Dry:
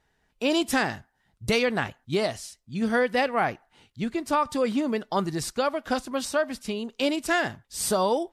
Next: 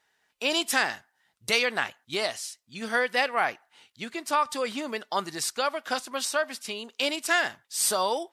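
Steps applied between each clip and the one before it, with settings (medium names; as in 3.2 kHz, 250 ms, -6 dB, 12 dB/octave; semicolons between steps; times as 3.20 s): high-pass 1.3 kHz 6 dB/octave; trim +4 dB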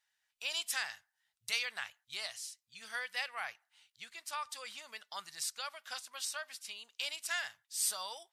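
amplifier tone stack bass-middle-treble 10-0-10; trim -7 dB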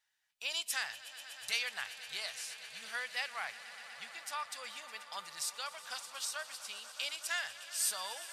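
echo with a slow build-up 122 ms, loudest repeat 5, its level -17.5 dB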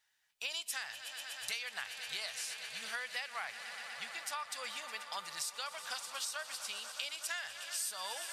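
compression 6:1, threshold -40 dBFS, peak gain reduction 11.5 dB; trim +4 dB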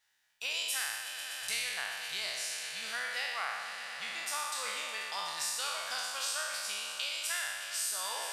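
spectral sustain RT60 1.59 s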